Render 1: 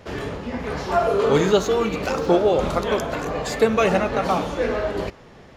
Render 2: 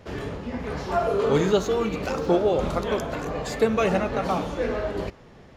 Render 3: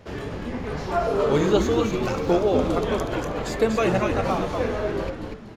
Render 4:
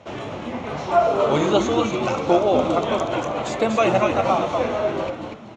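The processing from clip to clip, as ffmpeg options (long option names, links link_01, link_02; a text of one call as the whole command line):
ffmpeg -i in.wav -af "lowshelf=frequency=350:gain=4,volume=-5dB" out.wav
ffmpeg -i in.wav -filter_complex "[0:a]asplit=6[link_01][link_02][link_03][link_04][link_05][link_06];[link_02]adelay=241,afreqshift=-94,volume=-4.5dB[link_07];[link_03]adelay=482,afreqshift=-188,volume=-13.4dB[link_08];[link_04]adelay=723,afreqshift=-282,volume=-22.2dB[link_09];[link_05]adelay=964,afreqshift=-376,volume=-31.1dB[link_10];[link_06]adelay=1205,afreqshift=-470,volume=-40dB[link_11];[link_01][link_07][link_08][link_09][link_10][link_11]amix=inputs=6:normalize=0" out.wav
ffmpeg -i in.wav -af "highpass=160,equalizer=frequency=180:width_type=q:width=4:gain=-7,equalizer=frequency=270:width_type=q:width=4:gain=-5,equalizer=frequency=430:width_type=q:width=4:gain=-9,equalizer=frequency=670:width_type=q:width=4:gain=3,equalizer=frequency=1700:width_type=q:width=4:gain=-9,equalizer=frequency=4800:width_type=q:width=4:gain=-10,lowpass=frequency=6900:width=0.5412,lowpass=frequency=6900:width=1.3066,volume=6dB" out.wav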